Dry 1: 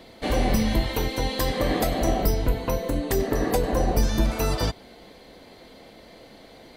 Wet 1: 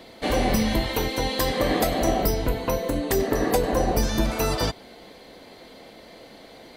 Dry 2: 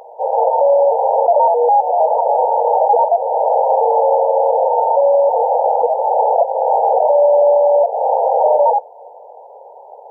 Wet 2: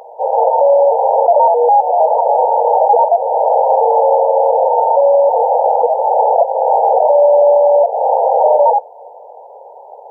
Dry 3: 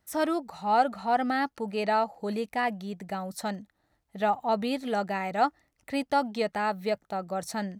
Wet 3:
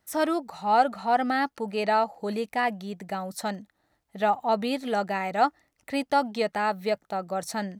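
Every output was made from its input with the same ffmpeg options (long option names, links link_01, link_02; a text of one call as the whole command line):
ffmpeg -i in.wav -af "lowshelf=frequency=140:gain=-6.5,volume=2.5dB" out.wav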